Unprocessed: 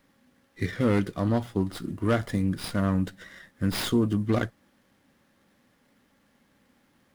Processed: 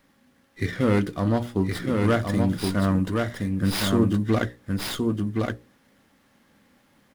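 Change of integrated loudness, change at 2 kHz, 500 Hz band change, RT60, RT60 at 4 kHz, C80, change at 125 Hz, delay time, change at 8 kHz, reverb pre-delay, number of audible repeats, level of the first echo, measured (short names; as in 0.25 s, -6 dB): +3.0 dB, +4.5 dB, +4.0 dB, none, none, none, +4.0 dB, 1.069 s, +4.5 dB, none, 1, -3.5 dB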